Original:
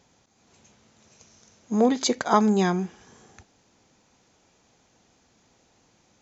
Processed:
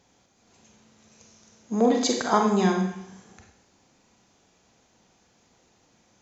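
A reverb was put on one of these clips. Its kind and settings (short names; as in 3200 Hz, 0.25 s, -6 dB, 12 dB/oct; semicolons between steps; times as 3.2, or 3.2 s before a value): Schroeder reverb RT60 0.73 s, combs from 32 ms, DRR 2 dB; gain -2 dB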